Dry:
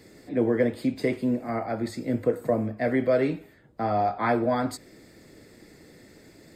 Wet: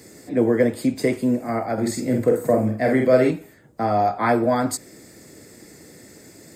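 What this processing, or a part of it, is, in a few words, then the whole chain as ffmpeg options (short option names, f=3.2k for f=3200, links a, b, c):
budget condenser microphone: -filter_complex "[0:a]asettb=1/sr,asplit=3[a][b][c];[a]atrim=end=1.734[d];[b]atrim=start=1.73:end=3.31,asetpts=PTS-STARTPTS,afade=t=in:d=0.004:c=qsin,afade=t=out:st=1.576:d=0.004:c=qsin,asplit=2[e][f];[f]adelay=47,volume=-4dB[g];[e][g]amix=inputs=2:normalize=0,atrim=end_sample=69678[h];[c]atrim=start=3.306[i];[d][h]acrossfade=d=0.004:c1=hsin:c2=qsin[j];[j][i]acrossfade=d=0.004:c1=qsin:c2=hsin,highpass=70,highshelf=f=5.1k:t=q:w=1.5:g=7,volume=5dB"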